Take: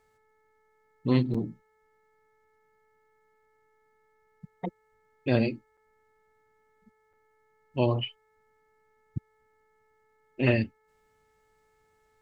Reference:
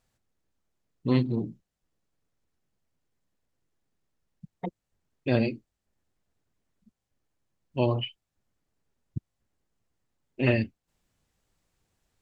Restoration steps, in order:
hum removal 434 Hz, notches 5
repair the gap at 0:01.34/0:05.77/0:07.13, 5.2 ms

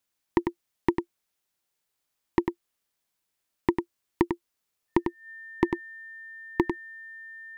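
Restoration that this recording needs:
notch filter 1,800 Hz, Q 30
echo removal 98 ms −6.5 dB

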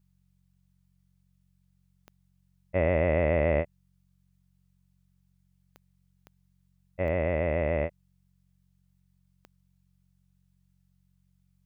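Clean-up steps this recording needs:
click removal
hum removal 45.7 Hz, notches 4

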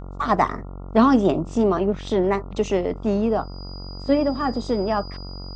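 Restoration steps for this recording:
hum removal 46.3 Hz, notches 30
notch filter 4,900 Hz, Q 30

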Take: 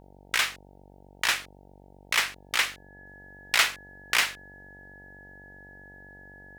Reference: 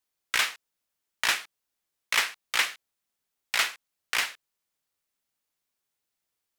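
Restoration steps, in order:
hum removal 47.8 Hz, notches 19
notch filter 1,700 Hz, Q 30
level 0 dB, from 0:03.06 −3.5 dB

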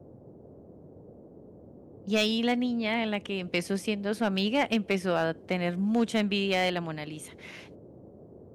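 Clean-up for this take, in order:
clipped peaks rebuilt −16.5 dBFS
noise reduction from a noise print 24 dB

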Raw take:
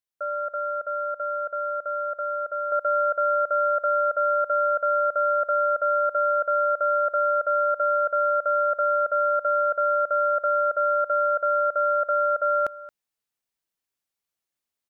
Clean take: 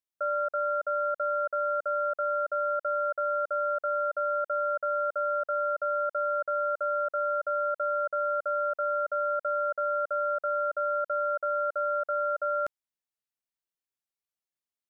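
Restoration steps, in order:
echo removal 224 ms −17.5 dB
level correction −6 dB, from 0:02.72

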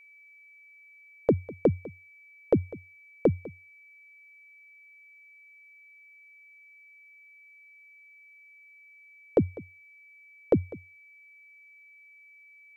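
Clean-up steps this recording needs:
notch filter 2,300 Hz, Q 30
echo removal 200 ms −19.5 dB

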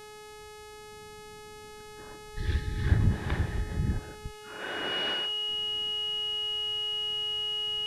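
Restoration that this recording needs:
hum removal 423.7 Hz, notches 28
notch filter 2,900 Hz, Q 30
downward expander −39 dBFS, range −21 dB

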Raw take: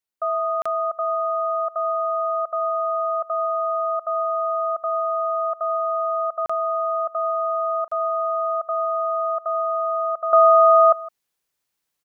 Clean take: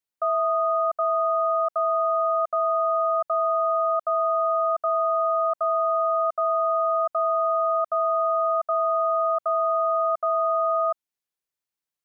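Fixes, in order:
repair the gap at 0:00.62/0:06.46/0:07.88, 35 ms
echo removal 161 ms −20.5 dB
level 0 dB, from 0:10.33 −10.5 dB

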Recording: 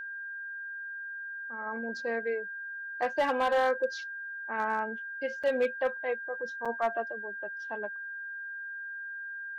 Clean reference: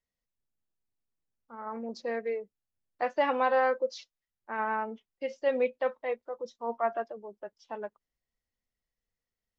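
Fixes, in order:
clipped peaks rebuilt −20.5 dBFS
notch filter 1,600 Hz, Q 30
repair the gap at 0:05.43/0:06.65, 5.9 ms

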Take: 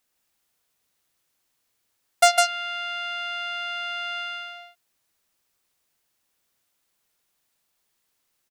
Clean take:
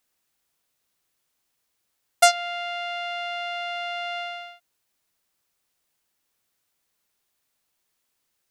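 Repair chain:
clipped peaks rebuilt −6 dBFS
echo removal 154 ms −3 dB

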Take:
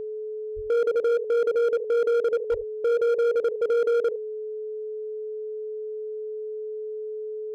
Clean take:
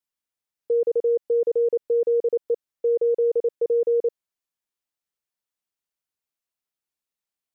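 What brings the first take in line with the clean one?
clipped peaks rebuilt −19 dBFS
notch filter 430 Hz, Q 30
0:00.55–0:00.67: high-pass filter 140 Hz 24 dB per octave
0:02.50–0:02.62: high-pass filter 140 Hz 24 dB per octave
echo removal 72 ms −12 dB

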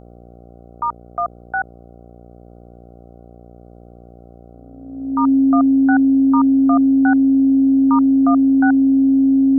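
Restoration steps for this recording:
hum removal 59.2 Hz, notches 13
notch filter 270 Hz, Q 30
broadband denoise 19 dB, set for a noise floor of −43 dBFS

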